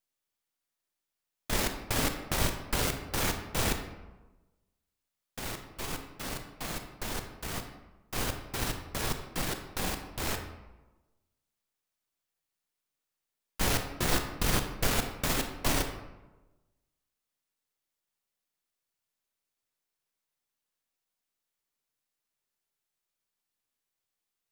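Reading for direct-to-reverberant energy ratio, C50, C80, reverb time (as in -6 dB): 6.0 dB, 7.5 dB, 9.5 dB, 1.1 s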